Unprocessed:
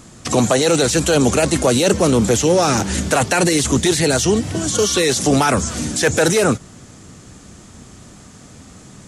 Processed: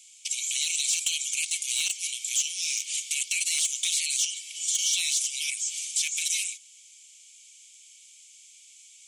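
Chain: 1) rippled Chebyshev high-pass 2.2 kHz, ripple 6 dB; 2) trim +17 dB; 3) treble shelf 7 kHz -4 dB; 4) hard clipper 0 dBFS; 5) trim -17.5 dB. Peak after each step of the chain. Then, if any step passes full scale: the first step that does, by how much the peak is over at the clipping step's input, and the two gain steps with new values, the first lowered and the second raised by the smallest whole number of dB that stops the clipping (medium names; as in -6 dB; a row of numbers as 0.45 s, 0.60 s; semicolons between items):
-11.0 dBFS, +6.0 dBFS, +4.5 dBFS, 0.0 dBFS, -17.5 dBFS; step 2, 4.5 dB; step 2 +12 dB, step 5 -12.5 dB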